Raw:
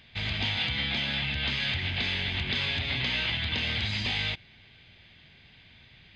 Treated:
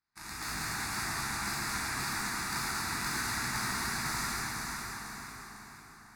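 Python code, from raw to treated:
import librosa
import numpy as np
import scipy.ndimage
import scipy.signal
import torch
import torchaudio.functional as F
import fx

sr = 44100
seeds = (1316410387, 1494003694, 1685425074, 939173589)

p1 = fx.spec_clip(x, sr, under_db=26)
p2 = fx.highpass(p1, sr, hz=130.0, slope=24, at=(1.93, 2.41))
p3 = fx.cheby_harmonics(p2, sr, harmonics=(5, 7), levels_db=(-17, -12), full_scale_db=-13.0)
p4 = fx.fixed_phaser(p3, sr, hz=1300.0, stages=4)
p5 = p4 + fx.echo_feedback(p4, sr, ms=501, feedback_pct=39, wet_db=-6, dry=0)
p6 = fx.rev_plate(p5, sr, seeds[0], rt60_s=4.7, hf_ratio=0.65, predelay_ms=0, drr_db=-9.0)
y = p6 * librosa.db_to_amplitude(-5.5)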